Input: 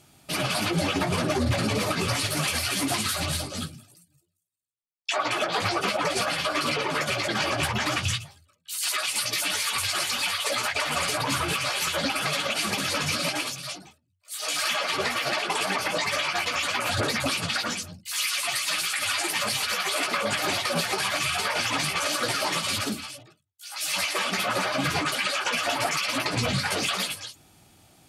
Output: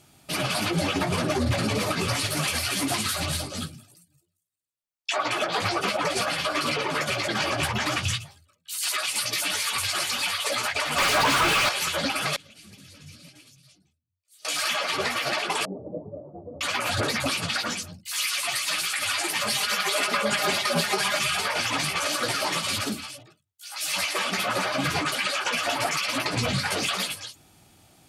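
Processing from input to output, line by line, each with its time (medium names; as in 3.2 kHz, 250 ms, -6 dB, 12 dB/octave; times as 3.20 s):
10.98–11.69 s: overdrive pedal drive 37 dB, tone 3 kHz, clips at -13.5 dBFS
12.36–14.45 s: amplifier tone stack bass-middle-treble 10-0-1
15.65–16.61 s: steep low-pass 550 Hz
19.48–21.39 s: comb 4.9 ms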